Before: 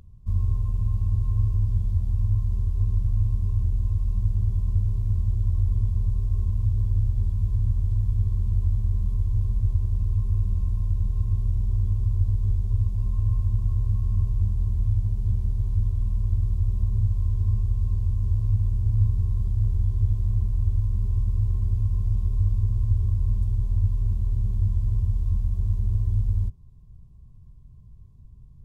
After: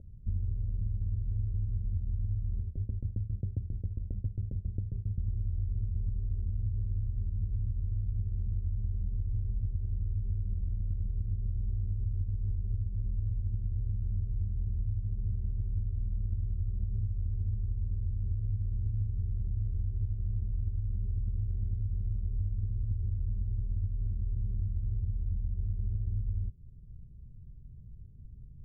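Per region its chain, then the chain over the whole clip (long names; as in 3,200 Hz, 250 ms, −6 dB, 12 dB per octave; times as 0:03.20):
0:02.62–0:05.18: high-pass filter 54 Hz + shaped tremolo saw down 7.4 Hz, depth 100%
whole clip: elliptic low-pass filter 570 Hz, stop band 50 dB; downward compressor 5 to 1, threshold −29 dBFS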